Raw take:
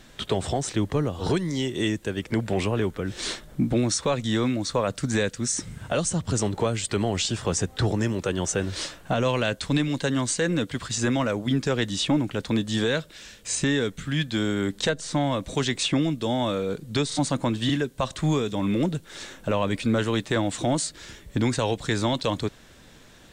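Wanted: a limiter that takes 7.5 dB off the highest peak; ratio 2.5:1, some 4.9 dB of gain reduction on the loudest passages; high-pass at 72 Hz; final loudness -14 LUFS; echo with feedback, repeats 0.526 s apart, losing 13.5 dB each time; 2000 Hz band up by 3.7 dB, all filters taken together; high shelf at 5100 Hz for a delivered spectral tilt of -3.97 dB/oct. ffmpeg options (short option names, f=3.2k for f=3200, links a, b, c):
-af "highpass=72,equalizer=f=2k:t=o:g=4,highshelf=f=5.1k:g=5,acompressor=threshold=-26dB:ratio=2.5,alimiter=limit=-19dB:level=0:latency=1,aecho=1:1:526|1052:0.211|0.0444,volume=16dB"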